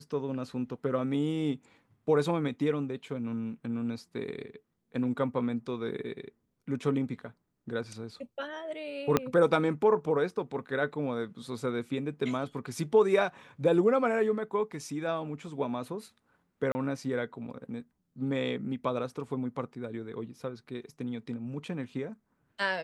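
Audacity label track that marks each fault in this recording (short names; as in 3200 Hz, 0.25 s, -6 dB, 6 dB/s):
9.170000	9.170000	pop -10 dBFS
16.720000	16.750000	gap 30 ms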